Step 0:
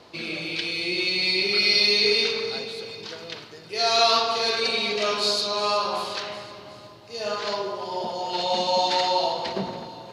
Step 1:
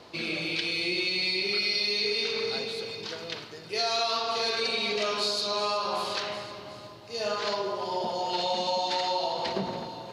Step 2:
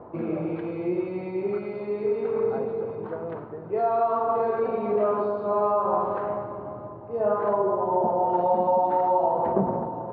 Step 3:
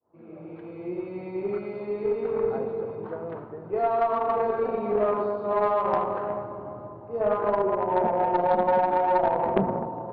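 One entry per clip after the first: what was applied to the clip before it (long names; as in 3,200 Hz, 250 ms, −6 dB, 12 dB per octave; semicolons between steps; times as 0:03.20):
downward compressor 6 to 1, threshold −25 dBFS, peak gain reduction 10 dB
low-pass filter 1,100 Hz 24 dB per octave; level +8 dB
fade in at the beginning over 1.56 s; harmonic generator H 2 −12 dB, 4 −11 dB, 6 −21 dB, 7 −32 dB, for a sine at −9 dBFS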